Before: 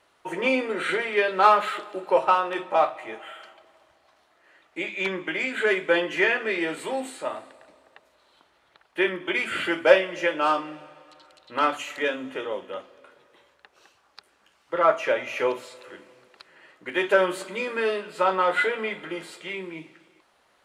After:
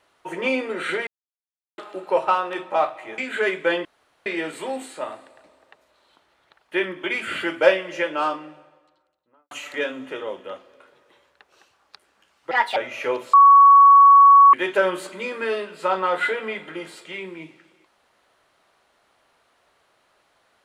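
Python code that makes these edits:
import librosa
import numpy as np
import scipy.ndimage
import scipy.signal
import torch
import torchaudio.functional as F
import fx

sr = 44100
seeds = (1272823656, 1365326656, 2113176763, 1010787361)

y = fx.studio_fade_out(x, sr, start_s=10.24, length_s=1.51)
y = fx.edit(y, sr, fx.silence(start_s=1.07, length_s=0.71),
    fx.cut(start_s=3.18, length_s=2.24),
    fx.room_tone_fill(start_s=6.09, length_s=0.41),
    fx.speed_span(start_s=14.75, length_s=0.37, speed=1.46),
    fx.bleep(start_s=15.69, length_s=1.2, hz=1120.0, db=-7.0), tone=tone)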